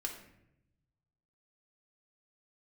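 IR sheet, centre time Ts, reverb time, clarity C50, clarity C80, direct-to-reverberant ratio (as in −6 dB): 24 ms, 0.80 s, 7.0 dB, 10.0 dB, 0.5 dB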